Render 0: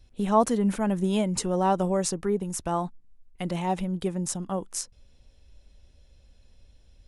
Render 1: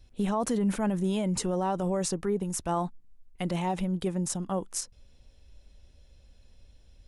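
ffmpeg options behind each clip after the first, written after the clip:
-af "alimiter=limit=-20dB:level=0:latency=1:release=17"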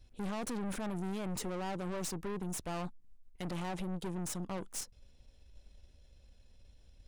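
-af "aeval=exprs='(tanh(63.1*val(0)+0.7)-tanh(0.7))/63.1':c=same"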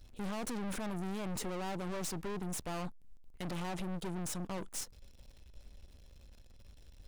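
-af "aeval=exprs='val(0)+0.5*0.00141*sgn(val(0))':c=same,aeval=exprs='(tanh(112*val(0)+0.75)-tanh(0.75))/112':c=same,volume=4dB"

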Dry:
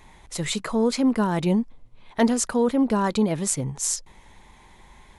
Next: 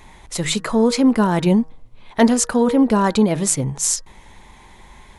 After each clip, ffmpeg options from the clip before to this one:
-af "bandreject=f=158.3:t=h:w=4,bandreject=f=316.6:t=h:w=4,bandreject=f=474.9:t=h:w=4,bandreject=f=633.2:t=h:w=4,bandreject=f=791.5:t=h:w=4,bandreject=f=949.8:t=h:w=4,bandreject=f=1.1081k:t=h:w=4,bandreject=f=1.2664k:t=h:w=4,bandreject=f=1.4247k:t=h:w=4,bandreject=f=1.583k:t=h:w=4,bandreject=f=1.7413k:t=h:w=4,bandreject=f=1.8996k:t=h:w=4,volume=6dB"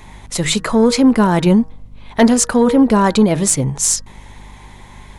-af "asoftclip=type=tanh:threshold=-5.5dB,aeval=exprs='val(0)+0.00631*(sin(2*PI*50*n/s)+sin(2*PI*2*50*n/s)/2+sin(2*PI*3*50*n/s)/3+sin(2*PI*4*50*n/s)/4+sin(2*PI*5*50*n/s)/5)':c=same,volume=4.5dB"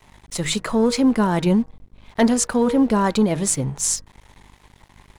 -af "aeval=exprs='sgn(val(0))*max(abs(val(0))-0.0119,0)':c=same,volume=-5.5dB"

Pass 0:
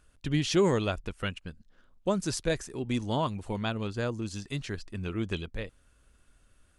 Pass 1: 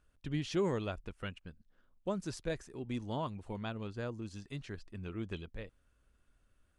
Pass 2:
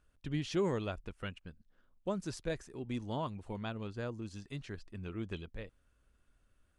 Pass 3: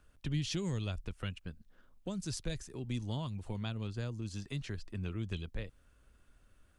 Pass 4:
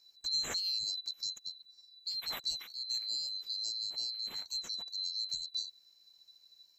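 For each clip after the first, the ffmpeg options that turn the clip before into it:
-af "highshelf=f=3.9k:g=-7.5,volume=-8dB"
-af anull
-filter_complex "[0:a]acrossover=split=170|3000[a][b][c];[b]acompressor=threshold=-50dB:ratio=5[d];[a][d][c]amix=inputs=3:normalize=0,volume=6.5dB"
-af "afftfilt=real='real(if(lt(b,736),b+184*(1-2*mod(floor(b/184),2)),b),0)':imag='imag(if(lt(b,736),b+184*(1-2*mod(floor(b/184),2)),b),0)':win_size=2048:overlap=0.75"

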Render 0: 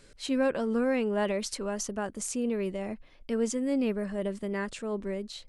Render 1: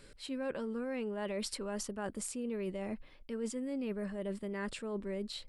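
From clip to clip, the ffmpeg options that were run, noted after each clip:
-af "equalizer=f=6.3k:t=o:w=0.23:g=-10.5,bandreject=f=690:w=12,areverse,acompressor=threshold=-35dB:ratio=6,areverse"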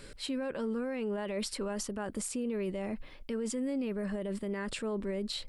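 -af "alimiter=level_in=10.5dB:limit=-24dB:level=0:latency=1:release=72,volume=-10.5dB,volume=7.5dB"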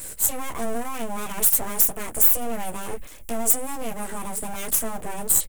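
-af "aecho=1:1:13|27:0.631|0.266,aeval=exprs='abs(val(0))':c=same,aexciter=amount=12.3:drive=2.5:freq=6.7k,volume=6dB"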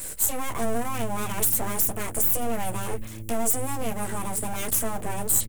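-filter_complex "[0:a]acrossover=split=430[a][b];[a]asplit=6[c][d][e][f][g][h];[d]adelay=231,afreqshift=-110,volume=-13dB[i];[e]adelay=462,afreqshift=-220,volume=-19.4dB[j];[f]adelay=693,afreqshift=-330,volume=-25.8dB[k];[g]adelay=924,afreqshift=-440,volume=-32.1dB[l];[h]adelay=1155,afreqshift=-550,volume=-38.5dB[m];[c][i][j][k][l][m]amix=inputs=6:normalize=0[n];[b]alimiter=limit=-11.5dB:level=0:latency=1:release=48[o];[n][o]amix=inputs=2:normalize=0,volume=1dB"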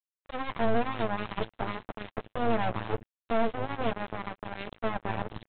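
-af "flanger=delay=9:depth=2.3:regen=82:speed=0.38:shape=sinusoidal,aresample=8000,acrusher=bits=3:mix=0:aa=0.5,aresample=44100"

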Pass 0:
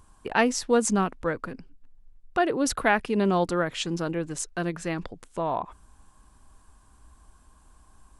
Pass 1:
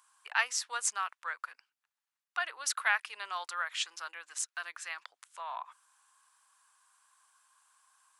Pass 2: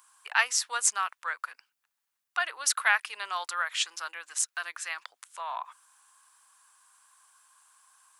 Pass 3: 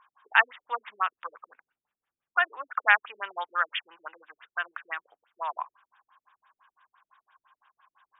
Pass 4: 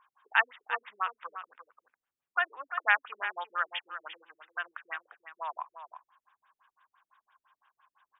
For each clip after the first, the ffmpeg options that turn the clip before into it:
-af "highpass=f=1.1k:w=0.5412,highpass=f=1.1k:w=1.3066,volume=-2.5dB"
-af "highshelf=f=10k:g=7.5,volume=4.5dB"
-af "afftfilt=real='re*lt(b*sr/1024,380*pow(3800/380,0.5+0.5*sin(2*PI*5.9*pts/sr)))':imag='im*lt(b*sr/1024,380*pow(3800/380,0.5+0.5*sin(2*PI*5.9*pts/sr)))':win_size=1024:overlap=0.75,volume=5dB"
-af "aecho=1:1:347:0.299,volume=-4.5dB"

